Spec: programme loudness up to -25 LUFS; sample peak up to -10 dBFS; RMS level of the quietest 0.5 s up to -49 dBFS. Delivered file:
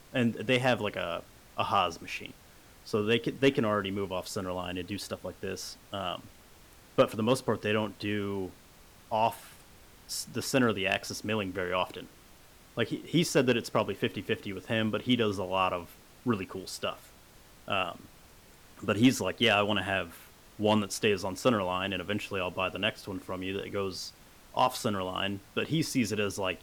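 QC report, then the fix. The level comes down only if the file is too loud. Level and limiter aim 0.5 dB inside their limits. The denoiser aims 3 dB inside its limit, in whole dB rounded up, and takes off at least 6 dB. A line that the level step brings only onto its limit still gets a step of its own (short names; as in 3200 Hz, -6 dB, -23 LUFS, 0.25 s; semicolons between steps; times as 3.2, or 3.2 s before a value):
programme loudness -30.5 LUFS: OK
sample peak -14.0 dBFS: OK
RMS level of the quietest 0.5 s -55 dBFS: OK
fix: none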